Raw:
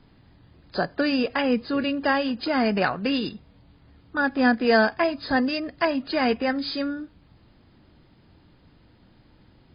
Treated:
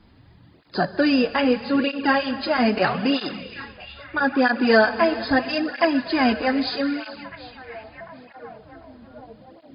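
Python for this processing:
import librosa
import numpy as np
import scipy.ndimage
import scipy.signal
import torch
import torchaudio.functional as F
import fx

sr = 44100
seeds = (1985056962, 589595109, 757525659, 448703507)

y = fx.echo_stepped(x, sr, ms=750, hz=2900.0, octaves=-0.7, feedback_pct=70, wet_db=-11.5)
y = fx.rev_gated(y, sr, seeds[0], gate_ms=500, shape='flat', drr_db=11.5)
y = fx.flanger_cancel(y, sr, hz=0.78, depth_ms=7.7)
y = F.gain(torch.from_numpy(y), 5.5).numpy()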